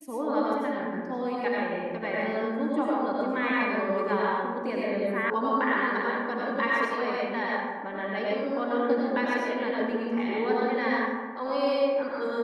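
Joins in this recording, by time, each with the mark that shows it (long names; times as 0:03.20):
0:05.30: cut off before it has died away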